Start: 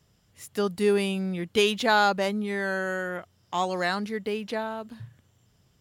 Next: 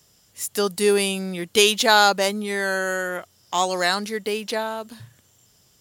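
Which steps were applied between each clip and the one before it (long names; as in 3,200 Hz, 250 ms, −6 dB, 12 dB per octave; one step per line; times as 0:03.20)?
bass and treble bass −7 dB, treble +11 dB
level +5 dB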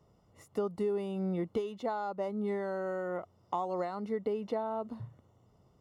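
downward compressor 16 to 1, threshold −28 dBFS, peak gain reduction 18 dB
Savitzky-Golay smoothing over 65 samples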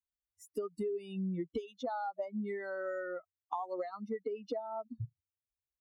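spectral dynamics exaggerated over time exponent 3
downward compressor 4 to 1, threshold −43 dBFS, peak gain reduction 10 dB
level +8 dB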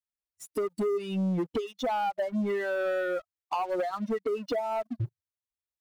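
leveller curve on the samples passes 3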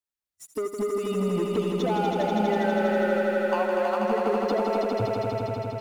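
echo that builds up and dies away 81 ms, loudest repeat 5, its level −5.5 dB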